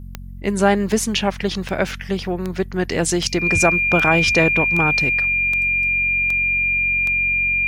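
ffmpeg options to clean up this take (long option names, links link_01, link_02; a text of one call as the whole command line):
ffmpeg -i in.wav -af "adeclick=threshold=4,bandreject=frequency=45.5:width_type=h:width=4,bandreject=frequency=91:width_type=h:width=4,bandreject=frequency=136.5:width_type=h:width=4,bandreject=frequency=182:width_type=h:width=4,bandreject=frequency=227.5:width_type=h:width=4,bandreject=frequency=2400:width=30" out.wav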